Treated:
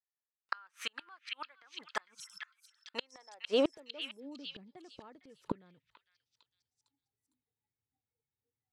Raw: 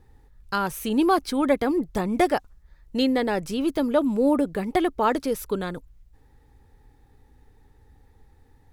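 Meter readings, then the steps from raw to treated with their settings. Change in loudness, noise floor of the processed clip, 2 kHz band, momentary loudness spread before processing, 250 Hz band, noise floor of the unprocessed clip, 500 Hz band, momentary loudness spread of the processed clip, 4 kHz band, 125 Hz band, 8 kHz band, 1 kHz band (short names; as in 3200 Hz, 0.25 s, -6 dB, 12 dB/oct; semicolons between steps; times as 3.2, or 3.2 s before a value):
-15.5 dB, under -85 dBFS, -11.5 dB, 8 LU, -20.5 dB, -57 dBFS, -14.5 dB, 21 LU, -6.0 dB, -19.0 dB, -14.0 dB, -20.5 dB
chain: spectral noise reduction 23 dB; gate with hold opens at -50 dBFS; spectral repair 2.16–2.48, 210–5200 Hz after; high-pass sweep 1400 Hz -> 120 Hz, 2.81–4.99; flipped gate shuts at -22 dBFS, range -37 dB; air absorption 110 m; delay with a stepping band-pass 0.455 s, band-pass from 2500 Hz, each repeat 0.7 oct, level -2 dB; gain +4 dB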